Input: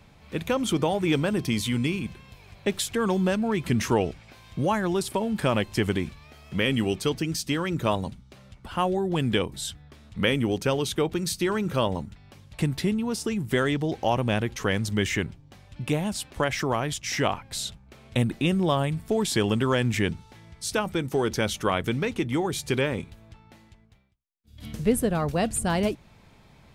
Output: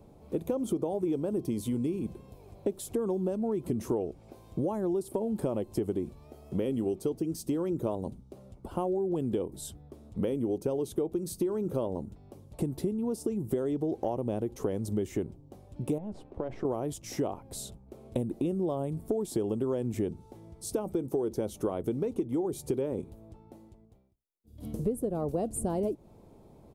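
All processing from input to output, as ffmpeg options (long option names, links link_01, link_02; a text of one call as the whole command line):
ffmpeg -i in.wav -filter_complex "[0:a]asettb=1/sr,asplit=3[link_01][link_02][link_03];[link_01]atrim=end=15.984[link_04];[link_02]atrim=start=15.98:end=16.65,asetpts=PTS-STARTPTS,afade=type=in:duration=0.004:curve=qsin,afade=type=out:start_time=0.666:duration=0.004:curve=qsin,aeval=exprs='if(lt(val(0),0),0.447*val(0),val(0))':channel_layout=same,lowpass=2400,acompressor=threshold=-30dB:ratio=5:attack=3.2:release=140:knee=1:detection=peak[link_05];[link_03]atrim=start=16.646[link_06];[link_04][link_05]acrossfade=duration=0.004:curve1=hsin:curve2=qsin[link_07];[link_07][link_06]acrossfade=duration=0.004:curve1=qsin:curve2=hsin,firequalizer=gain_entry='entry(150,0);entry(350,10);entry(1700,-17);entry(10000,0)':delay=0.05:min_phase=1,acompressor=threshold=-25dB:ratio=6,volume=-2.5dB" out.wav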